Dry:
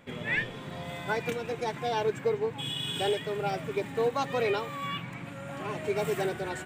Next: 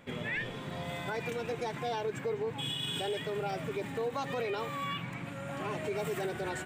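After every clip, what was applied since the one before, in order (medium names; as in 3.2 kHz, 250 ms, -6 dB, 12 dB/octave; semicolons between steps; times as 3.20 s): peak limiter -26.5 dBFS, peak gain reduction 8 dB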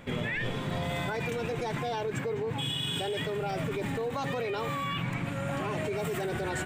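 in parallel at 0 dB: compressor with a negative ratio -39 dBFS, ratio -1; on the sum: bass shelf 77 Hz +11.5 dB; trim -1.5 dB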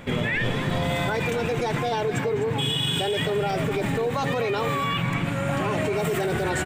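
delay 254 ms -11.5 dB; trim +7 dB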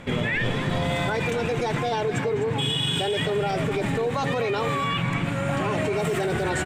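low-pass 11 kHz 12 dB/octave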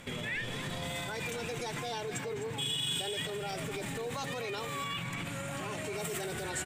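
peak limiter -21 dBFS, peak gain reduction 8.5 dB; pre-emphasis filter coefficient 0.8; trim +4 dB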